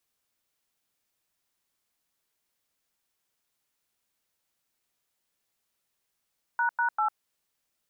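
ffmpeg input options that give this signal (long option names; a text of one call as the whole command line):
ffmpeg -f lavfi -i "aevalsrc='0.0531*clip(min(mod(t,0.197),0.101-mod(t,0.197))/0.002,0,1)*(eq(floor(t/0.197),0)*(sin(2*PI*941*mod(t,0.197))+sin(2*PI*1477*mod(t,0.197)))+eq(floor(t/0.197),1)*(sin(2*PI*941*mod(t,0.197))+sin(2*PI*1477*mod(t,0.197)))+eq(floor(t/0.197),2)*(sin(2*PI*852*mod(t,0.197))+sin(2*PI*1336*mod(t,0.197))))':duration=0.591:sample_rate=44100" out.wav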